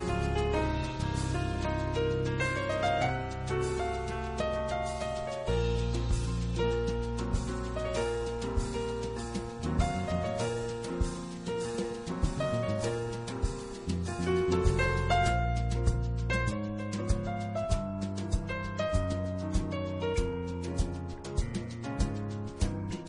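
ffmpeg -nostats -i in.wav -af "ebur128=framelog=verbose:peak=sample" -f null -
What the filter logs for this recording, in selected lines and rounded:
Integrated loudness:
  I:         -32.5 LUFS
  Threshold: -42.5 LUFS
Loudness range:
  LRA:         3.8 LU
  Threshold: -52.5 LUFS
  LRA low:   -34.1 LUFS
  LRA high:  -30.2 LUFS
Sample peak:
  Peak:      -12.7 dBFS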